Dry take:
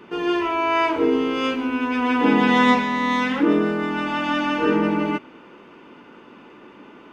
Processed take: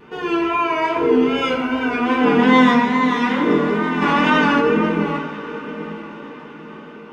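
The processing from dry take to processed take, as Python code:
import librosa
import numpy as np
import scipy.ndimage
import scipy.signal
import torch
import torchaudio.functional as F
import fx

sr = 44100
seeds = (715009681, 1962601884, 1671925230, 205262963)

y = fx.comb(x, sr, ms=1.4, depth=0.78, at=(1.27, 1.94))
y = fx.wow_flutter(y, sr, seeds[0], rate_hz=2.1, depth_cents=66.0)
y = fx.echo_diffused(y, sr, ms=909, feedback_pct=42, wet_db=-12.0)
y = fx.rev_fdn(y, sr, rt60_s=0.96, lf_ratio=1.0, hf_ratio=0.45, size_ms=39.0, drr_db=-1.0)
y = fx.env_flatten(y, sr, amount_pct=50, at=(4.01, 4.6), fade=0.02)
y = y * librosa.db_to_amplitude(-1.5)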